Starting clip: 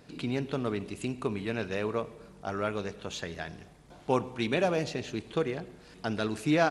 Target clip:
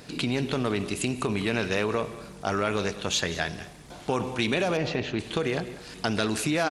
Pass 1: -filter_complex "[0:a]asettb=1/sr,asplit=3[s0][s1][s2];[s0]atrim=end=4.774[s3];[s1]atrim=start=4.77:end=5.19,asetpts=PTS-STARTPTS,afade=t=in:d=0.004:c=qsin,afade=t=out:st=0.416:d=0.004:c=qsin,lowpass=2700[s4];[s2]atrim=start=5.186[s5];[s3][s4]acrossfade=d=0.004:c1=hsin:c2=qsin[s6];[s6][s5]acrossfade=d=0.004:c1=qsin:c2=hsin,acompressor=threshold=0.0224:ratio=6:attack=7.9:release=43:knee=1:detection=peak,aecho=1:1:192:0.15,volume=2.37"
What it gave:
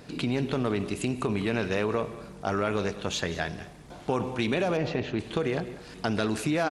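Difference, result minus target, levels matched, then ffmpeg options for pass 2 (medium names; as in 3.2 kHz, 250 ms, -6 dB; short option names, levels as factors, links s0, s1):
4 kHz band -4.0 dB
-filter_complex "[0:a]asettb=1/sr,asplit=3[s0][s1][s2];[s0]atrim=end=4.774[s3];[s1]atrim=start=4.77:end=5.19,asetpts=PTS-STARTPTS,afade=t=in:d=0.004:c=qsin,afade=t=out:st=0.416:d=0.004:c=qsin,lowpass=2700[s4];[s2]atrim=start=5.186[s5];[s3][s4]acrossfade=d=0.004:c1=hsin:c2=qsin[s6];[s6][s5]acrossfade=d=0.004:c1=qsin:c2=hsin,acompressor=threshold=0.0224:ratio=6:attack=7.9:release=43:knee=1:detection=peak,highshelf=f=2100:g=7,aecho=1:1:192:0.15,volume=2.37"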